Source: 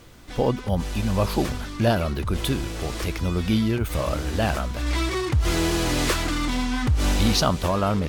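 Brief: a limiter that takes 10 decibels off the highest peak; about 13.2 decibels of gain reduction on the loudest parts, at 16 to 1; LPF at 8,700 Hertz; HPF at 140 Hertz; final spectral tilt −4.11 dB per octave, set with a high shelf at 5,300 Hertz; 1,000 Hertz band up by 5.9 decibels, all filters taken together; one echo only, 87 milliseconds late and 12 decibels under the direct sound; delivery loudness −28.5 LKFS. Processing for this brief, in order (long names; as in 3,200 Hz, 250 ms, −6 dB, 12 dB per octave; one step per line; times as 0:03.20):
high-pass filter 140 Hz
low-pass filter 8,700 Hz
parametric band 1,000 Hz +7.5 dB
high-shelf EQ 5,300 Hz +4 dB
downward compressor 16 to 1, threshold −26 dBFS
brickwall limiter −24 dBFS
single-tap delay 87 ms −12 dB
level +5 dB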